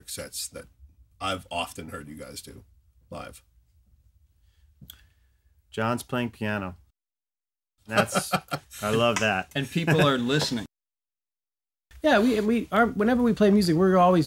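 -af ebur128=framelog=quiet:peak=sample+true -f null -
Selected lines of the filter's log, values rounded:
Integrated loudness:
  I:         -24.6 LUFS
  Threshold: -36.7 LUFS
Loudness range:
  LRA:        15.0 LU
  Threshold: -48.3 LUFS
  LRA low:   -39.3 LUFS
  LRA high:  -24.3 LUFS
Sample peak:
  Peak:       -7.6 dBFS
True peak:
  Peak:       -7.6 dBFS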